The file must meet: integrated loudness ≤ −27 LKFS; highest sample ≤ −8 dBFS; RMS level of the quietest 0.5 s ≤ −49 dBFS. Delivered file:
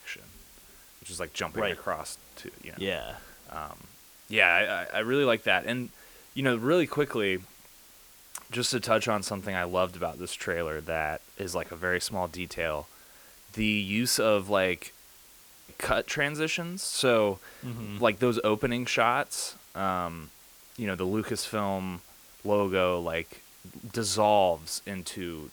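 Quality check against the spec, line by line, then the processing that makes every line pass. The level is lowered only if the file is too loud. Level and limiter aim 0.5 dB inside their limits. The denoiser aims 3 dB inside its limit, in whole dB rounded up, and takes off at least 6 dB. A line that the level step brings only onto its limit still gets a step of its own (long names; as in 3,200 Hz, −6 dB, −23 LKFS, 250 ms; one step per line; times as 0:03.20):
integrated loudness −28.5 LKFS: in spec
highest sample −5.5 dBFS: out of spec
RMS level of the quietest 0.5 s −54 dBFS: in spec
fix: brickwall limiter −8.5 dBFS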